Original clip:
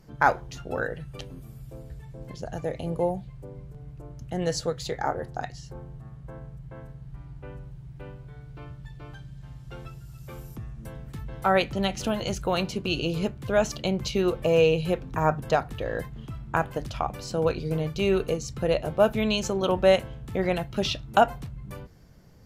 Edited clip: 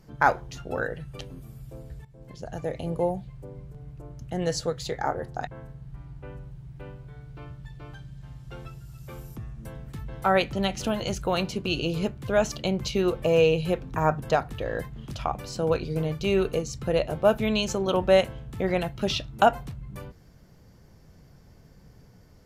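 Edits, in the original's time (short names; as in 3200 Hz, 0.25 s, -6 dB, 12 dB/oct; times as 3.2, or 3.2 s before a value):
2.05–2.85 fade in equal-power, from -13.5 dB
5.47–6.67 cut
16.3–16.85 cut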